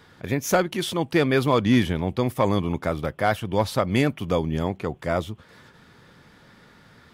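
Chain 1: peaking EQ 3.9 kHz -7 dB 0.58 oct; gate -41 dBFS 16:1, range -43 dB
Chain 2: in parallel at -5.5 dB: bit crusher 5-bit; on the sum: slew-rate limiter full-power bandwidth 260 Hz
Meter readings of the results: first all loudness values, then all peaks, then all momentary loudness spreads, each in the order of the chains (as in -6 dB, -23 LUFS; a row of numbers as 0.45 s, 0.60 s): -24.0 LUFS, -20.5 LUFS; -9.0 dBFS, -5.5 dBFS; 8 LU, 8 LU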